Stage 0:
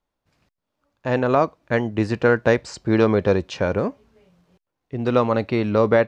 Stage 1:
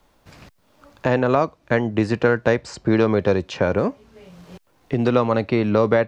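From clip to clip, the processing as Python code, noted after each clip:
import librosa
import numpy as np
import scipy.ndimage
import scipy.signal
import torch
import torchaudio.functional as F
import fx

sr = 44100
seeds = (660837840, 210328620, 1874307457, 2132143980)

y = fx.band_squash(x, sr, depth_pct=70)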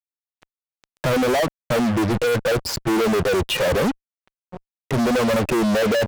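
y = fx.spec_expand(x, sr, power=2.2)
y = fx.fuzz(y, sr, gain_db=40.0, gate_db=-37.0)
y = y * librosa.db_to_amplitude(-4.5)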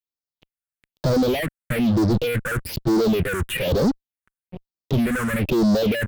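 y = fx.phaser_stages(x, sr, stages=4, low_hz=630.0, high_hz=2400.0, hz=1.1, feedback_pct=50)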